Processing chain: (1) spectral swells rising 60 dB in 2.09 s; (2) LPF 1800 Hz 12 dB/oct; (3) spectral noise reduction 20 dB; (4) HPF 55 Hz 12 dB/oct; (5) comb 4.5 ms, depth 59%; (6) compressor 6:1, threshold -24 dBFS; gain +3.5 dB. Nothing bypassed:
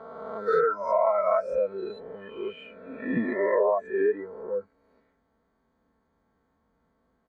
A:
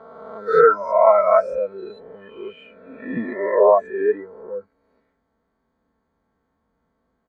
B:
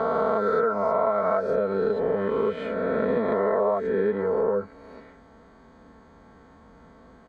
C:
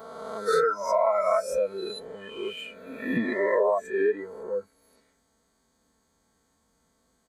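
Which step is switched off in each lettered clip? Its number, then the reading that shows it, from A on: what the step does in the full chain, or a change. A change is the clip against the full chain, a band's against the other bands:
6, mean gain reduction 2.5 dB; 3, 125 Hz band +6.0 dB; 2, 2 kHz band +3.0 dB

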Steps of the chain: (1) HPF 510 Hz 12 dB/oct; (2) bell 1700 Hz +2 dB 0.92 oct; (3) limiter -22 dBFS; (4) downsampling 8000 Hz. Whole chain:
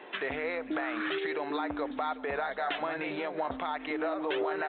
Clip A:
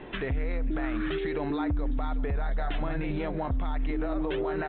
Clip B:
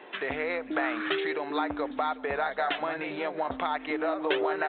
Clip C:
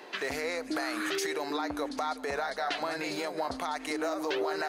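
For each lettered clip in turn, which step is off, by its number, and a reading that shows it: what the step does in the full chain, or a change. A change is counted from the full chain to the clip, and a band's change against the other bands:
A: 1, 125 Hz band +23.5 dB; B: 3, mean gain reduction 2.0 dB; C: 4, 4 kHz band +4.0 dB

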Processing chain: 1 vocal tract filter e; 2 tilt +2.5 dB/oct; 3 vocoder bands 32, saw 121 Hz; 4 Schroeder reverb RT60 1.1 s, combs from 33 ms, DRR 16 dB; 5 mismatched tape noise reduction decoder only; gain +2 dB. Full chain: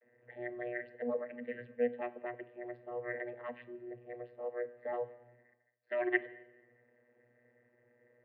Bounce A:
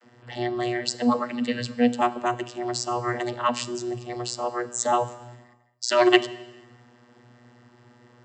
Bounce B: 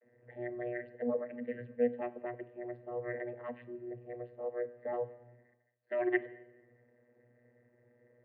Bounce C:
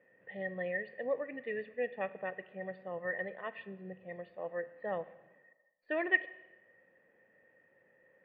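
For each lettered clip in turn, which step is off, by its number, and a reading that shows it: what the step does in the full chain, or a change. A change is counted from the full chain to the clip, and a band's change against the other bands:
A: 1, 2 kHz band -9.5 dB; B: 2, 125 Hz band +6.0 dB; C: 3, 125 Hz band +5.5 dB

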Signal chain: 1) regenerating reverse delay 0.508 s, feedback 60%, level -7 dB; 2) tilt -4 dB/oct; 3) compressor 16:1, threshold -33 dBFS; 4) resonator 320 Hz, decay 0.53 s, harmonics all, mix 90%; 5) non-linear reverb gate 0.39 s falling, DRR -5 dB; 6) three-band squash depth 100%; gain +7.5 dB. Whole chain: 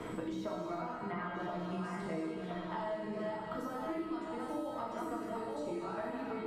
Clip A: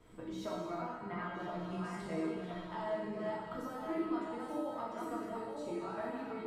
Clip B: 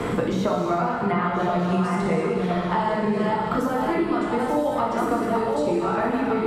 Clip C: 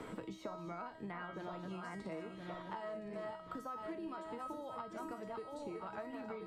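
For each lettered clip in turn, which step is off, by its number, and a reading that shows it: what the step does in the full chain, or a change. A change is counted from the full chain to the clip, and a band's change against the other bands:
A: 6, crest factor change +1.5 dB; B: 4, 125 Hz band +2.5 dB; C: 5, crest factor change +2.5 dB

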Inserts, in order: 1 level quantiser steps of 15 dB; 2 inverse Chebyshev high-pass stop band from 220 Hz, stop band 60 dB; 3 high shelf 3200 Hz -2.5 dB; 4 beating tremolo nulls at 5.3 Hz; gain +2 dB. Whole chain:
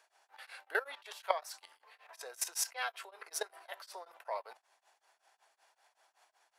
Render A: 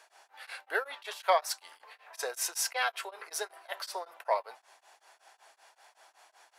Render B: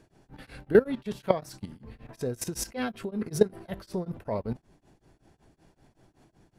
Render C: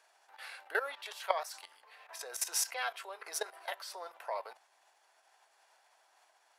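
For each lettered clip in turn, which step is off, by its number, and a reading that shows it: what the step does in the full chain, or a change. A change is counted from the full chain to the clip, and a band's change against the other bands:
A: 1, crest factor change -6.5 dB; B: 2, 500 Hz band +16.0 dB; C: 4, crest factor change -1.5 dB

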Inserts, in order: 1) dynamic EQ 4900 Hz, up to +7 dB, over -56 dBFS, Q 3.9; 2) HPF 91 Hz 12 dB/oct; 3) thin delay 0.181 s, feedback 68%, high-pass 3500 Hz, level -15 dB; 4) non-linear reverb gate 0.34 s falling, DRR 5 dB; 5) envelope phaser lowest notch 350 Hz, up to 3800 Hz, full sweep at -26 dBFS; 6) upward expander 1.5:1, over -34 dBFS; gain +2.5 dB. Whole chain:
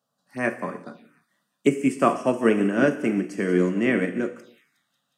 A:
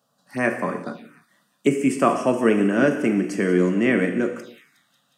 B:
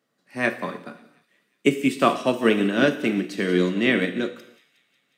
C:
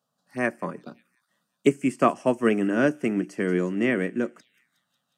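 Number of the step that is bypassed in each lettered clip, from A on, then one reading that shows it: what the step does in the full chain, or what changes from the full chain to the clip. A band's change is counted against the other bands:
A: 6, loudness change +2.5 LU; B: 5, 4 kHz band +11.0 dB; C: 4, loudness change -1.5 LU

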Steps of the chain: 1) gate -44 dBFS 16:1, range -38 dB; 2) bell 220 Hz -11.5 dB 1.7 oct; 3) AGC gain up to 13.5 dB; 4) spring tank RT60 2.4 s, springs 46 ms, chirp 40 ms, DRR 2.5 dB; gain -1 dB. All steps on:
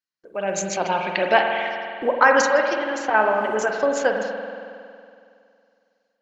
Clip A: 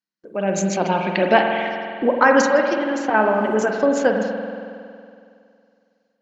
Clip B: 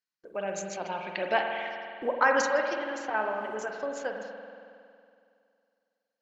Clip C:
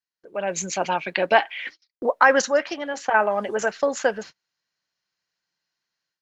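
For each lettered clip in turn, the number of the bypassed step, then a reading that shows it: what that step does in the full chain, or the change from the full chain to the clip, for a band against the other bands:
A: 2, 250 Hz band +9.0 dB; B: 3, loudness change -9.0 LU; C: 4, crest factor change +1.5 dB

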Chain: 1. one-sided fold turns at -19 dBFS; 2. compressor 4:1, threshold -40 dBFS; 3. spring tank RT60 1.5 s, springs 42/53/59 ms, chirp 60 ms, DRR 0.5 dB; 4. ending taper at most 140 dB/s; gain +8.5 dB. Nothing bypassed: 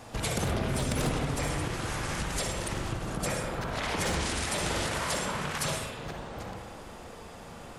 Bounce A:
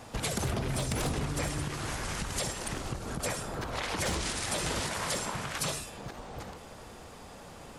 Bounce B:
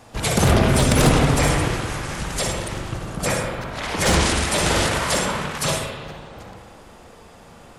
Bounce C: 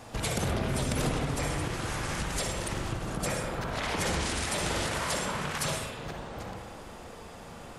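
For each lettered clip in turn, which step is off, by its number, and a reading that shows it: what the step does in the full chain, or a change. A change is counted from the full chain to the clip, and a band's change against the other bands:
3, 8 kHz band +2.5 dB; 2, mean gain reduction 6.0 dB; 1, distortion -24 dB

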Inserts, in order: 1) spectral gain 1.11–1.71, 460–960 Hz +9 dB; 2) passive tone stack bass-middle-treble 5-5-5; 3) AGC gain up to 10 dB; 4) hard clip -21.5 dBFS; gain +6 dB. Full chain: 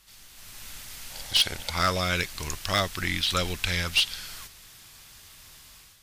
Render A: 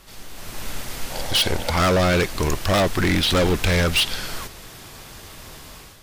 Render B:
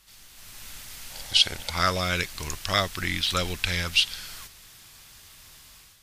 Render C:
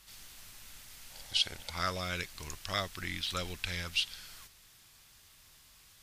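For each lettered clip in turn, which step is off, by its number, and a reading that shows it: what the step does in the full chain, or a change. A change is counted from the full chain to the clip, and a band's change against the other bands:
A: 2, 250 Hz band +7.5 dB; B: 4, distortion -14 dB; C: 3, crest factor change +8.5 dB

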